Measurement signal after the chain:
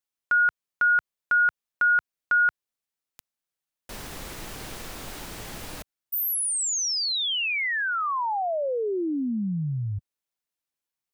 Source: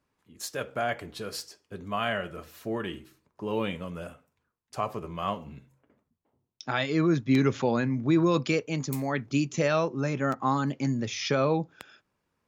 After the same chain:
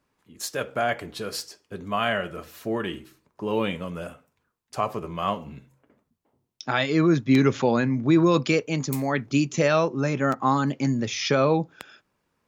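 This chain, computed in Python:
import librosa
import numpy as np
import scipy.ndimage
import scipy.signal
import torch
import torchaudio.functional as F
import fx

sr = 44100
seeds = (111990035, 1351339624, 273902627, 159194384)

y = fx.peak_eq(x, sr, hz=83.0, db=-3.0, octaves=1.2)
y = F.gain(torch.from_numpy(y), 4.5).numpy()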